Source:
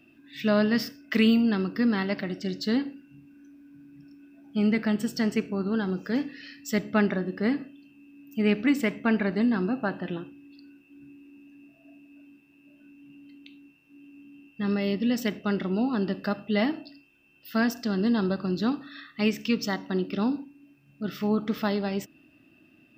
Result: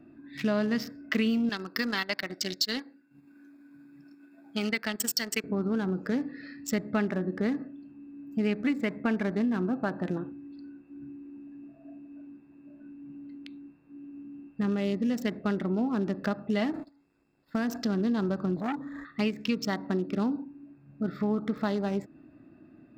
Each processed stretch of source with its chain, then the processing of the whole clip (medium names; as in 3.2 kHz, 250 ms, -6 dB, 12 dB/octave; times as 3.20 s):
1.49–5.44 s: tilt EQ +4.5 dB/octave + transient shaper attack +1 dB, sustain -10 dB
16.73–17.77 s: jump at every zero crossing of -40.5 dBFS + gate -39 dBFS, range -25 dB + compression 2.5:1, threshold -28 dBFS
18.56–19.05 s: median filter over 15 samples + rippled EQ curve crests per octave 1.1, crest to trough 8 dB + transformer saturation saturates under 1.2 kHz
whole clip: local Wiener filter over 15 samples; compression 3:1, threshold -34 dBFS; trim +6 dB